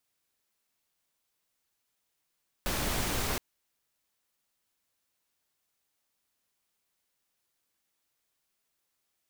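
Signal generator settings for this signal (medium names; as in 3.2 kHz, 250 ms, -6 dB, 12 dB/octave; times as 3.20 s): noise pink, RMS -31 dBFS 0.72 s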